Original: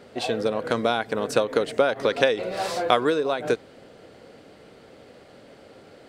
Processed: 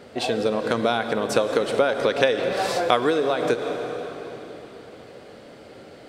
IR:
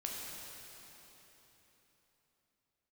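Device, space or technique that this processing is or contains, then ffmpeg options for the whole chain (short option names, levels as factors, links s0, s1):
ducked reverb: -filter_complex "[0:a]asplit=3[s0][s1][s2];[1:a]atrim=start_sample=2205[s3];[s1][s3]afir=irnorm=-1:irlink=0[s4];[s2]apad=whole_len=268523[s5];[s4][s5]sidechaincompress=threshold=0.0501:ratio=8:attack=12:release=156,volume=0.891[s6];[s0][s6]amix=inputs=2:normalize=0,volume=0.891"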